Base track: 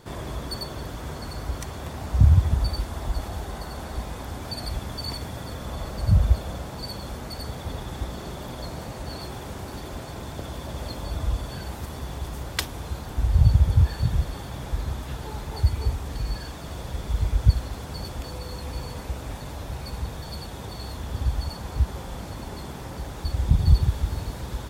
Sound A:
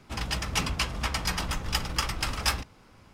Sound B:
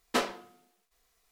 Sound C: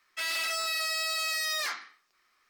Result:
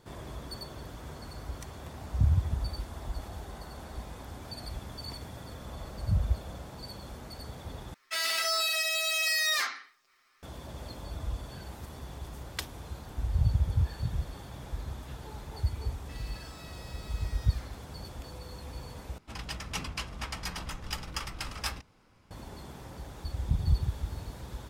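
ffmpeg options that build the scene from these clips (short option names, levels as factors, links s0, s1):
-filter_complex "[3:a]asplit=2[s0][s1];[0:a]volume=0.355[s2];[s0]aecho=1:1:7.5:0.9[s3];[s1]alimiter=level_in=3.76:limit=0.0631:level=0:latency=1:release=71,volume=0.266[s4];[s2]asplit=3[s5][s6][s7];[s5]atrim=end=7.944[s8];[s3]atrim=end=2.49[s9];[s6]atrim=start=10.426:end=19.184[s10];[1:a]atrim=end=3.13,asetpts=PTS-STARTPTS,volume=0.398[s11];[s7]atrim=start=22.306[s12];[s4]atrim=end=2.49,asetpts=PTS-STARTPTS,volume=0.224,afade=t=in:d=0.004:c=hsin,afade=t=out:st=2.486:d=0.004:c=hsin,adelay=15920[s13];[s8][s9]acrossfade=d=0.004:c1=hsin:c2=hsin[s14];[s14][s10]acrossfade=d=0.004:c1=hsin:c2=hsin[s15];[s15][s11]acrossfade=d=0.004:c1=hsin:c2=hsin[s16];[s16][s12]acrossfade=d=0.004:c1=hsin:c2=hsin[s17];[s17][s13]amix=inputs=2:normalize=0"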